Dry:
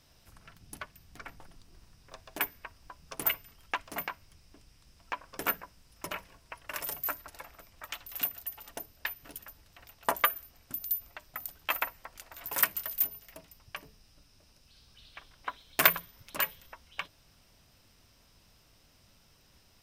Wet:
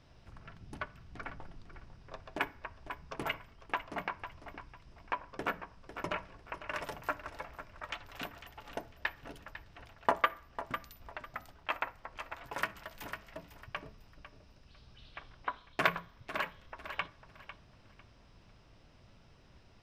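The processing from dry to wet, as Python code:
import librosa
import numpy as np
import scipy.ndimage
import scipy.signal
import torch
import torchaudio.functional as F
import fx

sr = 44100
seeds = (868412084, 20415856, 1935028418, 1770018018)

y = fx.spacing_loss(x, sr, db_at_10k=20)
y = fx.echo_thinned(y, sr, ms=500, feedback_pct=24, hz=210.0, wet_db=-13.0)
y = fx.rider(y, sr, range_db=3, speed_s=0.5)
y = fx.high_shelf(y, sr, hz=6400.0, db=-5.5)
y = fx.rev_fdn(y, sr, rt60_s=0.55, lf_ratio=1.0, hf_ratio=0.55, size_ms=48.0, drr_db=15.0)
y = F.gain(torch.from_numpy(y), 2.0).numpy()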